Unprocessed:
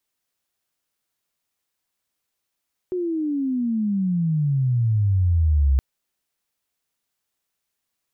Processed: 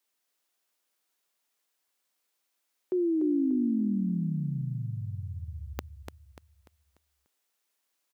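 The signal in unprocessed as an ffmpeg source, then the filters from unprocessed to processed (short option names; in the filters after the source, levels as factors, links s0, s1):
-f lavfi -i "aevalsrc='pow(10,(-22+8*t/2.87)/20)*sin(2*PI*370*2.87/log(65/370)*(exp(log(65/370)*t/2.87)-1))':d=2.87:s=44100"
-filter_complex "[0:a]highpass=280,asplit=2[s0][s1];[s1]aecho=0:1:294|588|882|1176|1470:0.473|0.185|0.072|0.0281|0.0109[s2];[s0][s2]amix=inputs=2:normalize=0"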